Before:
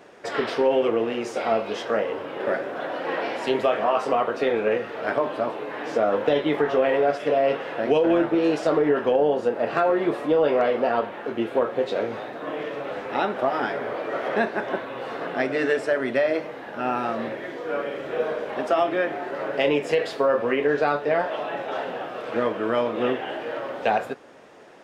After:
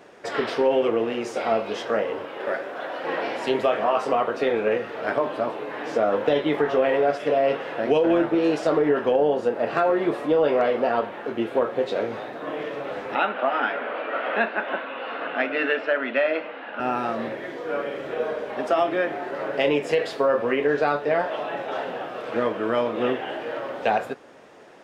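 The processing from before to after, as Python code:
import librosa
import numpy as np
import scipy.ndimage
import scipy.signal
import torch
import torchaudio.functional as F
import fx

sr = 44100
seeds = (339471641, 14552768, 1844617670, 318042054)

y = fx.low_shelf(x, sr, hz=290.0, db=-11.0, at=(2.25, 3.04))
y = fx.cabinet(y, sr, low_hz=230.0, low_slope=24, high_hz=3800.0, hz=(380.0, 1400.0, 2700.0), db=(-9, 6, 8), at=(13.15, 16.8))
y = fx.notch_comb(y, sr, f0_hz=170.0, at=(18.14, 18.63))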